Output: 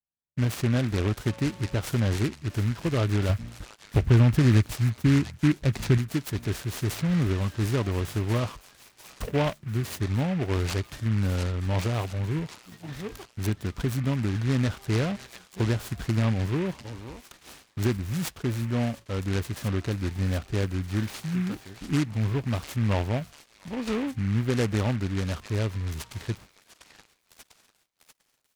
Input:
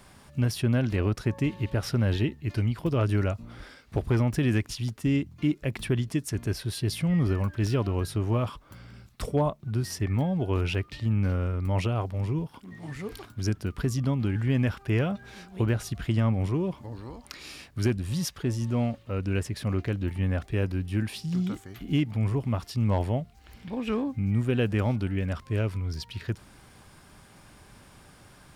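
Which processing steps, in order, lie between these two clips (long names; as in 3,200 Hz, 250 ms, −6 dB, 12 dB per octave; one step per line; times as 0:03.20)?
noise gate −42 dBFS, range −50 dB
0:03.29–0:05.98: parametric band 87 Hz +8 dB 2.6 octaves
echo through a band-pass that steps 696 ms, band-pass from 2,600 Hz, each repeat 0.7 octaves, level −6 dB
short delay modulated by noise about 1,700 Hz, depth 0.088 ms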